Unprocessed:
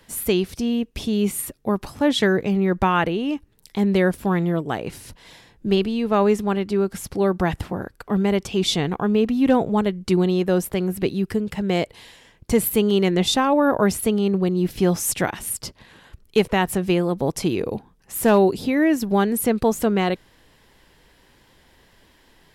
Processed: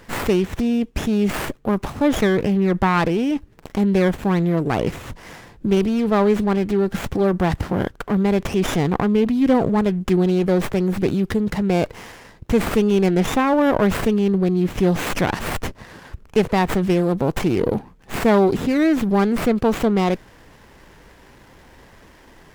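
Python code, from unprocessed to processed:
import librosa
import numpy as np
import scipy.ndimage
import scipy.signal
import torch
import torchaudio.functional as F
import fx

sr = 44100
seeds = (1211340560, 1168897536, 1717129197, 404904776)

p1 = fx.over_compress(x, sr, threshold_db=-29.0, ratio=-1.0)
p2 = x + F.gain(torch.from_numpy(p1), -2.0).numpy()
y = fx.running_max(p2, sr, window=9)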